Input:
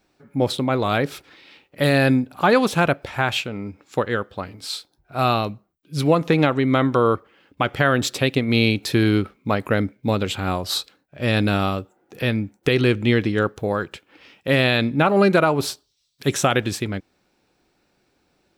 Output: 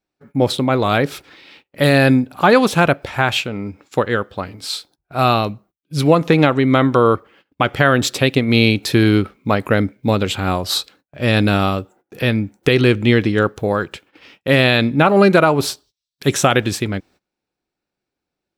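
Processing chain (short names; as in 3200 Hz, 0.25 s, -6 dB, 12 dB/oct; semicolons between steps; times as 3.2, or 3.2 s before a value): gate -50 dBFS, range -21 dB; gain +4.5 dB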